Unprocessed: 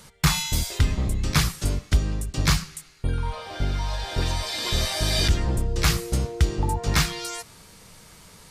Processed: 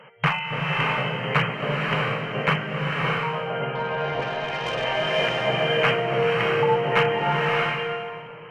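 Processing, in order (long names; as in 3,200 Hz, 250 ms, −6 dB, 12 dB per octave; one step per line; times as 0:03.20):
low shelf with overshoot 390 Hz −6.5 dB, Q 3
brick-wall band-pass 110–3,200 Hz
in parallel at −3.5 dB: asymmetric clip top −25.5 dBFS
0:03.75–0:04.84: on the sum: tube saturation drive 23 dB, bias 0.55
on a send: feedback echo with a low-pass in the loop 258 ms, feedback 82%, low-pass 1,000 Hz, level −18 dB
on the sum: slow-attack reverb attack 640 ms, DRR −1.5 dB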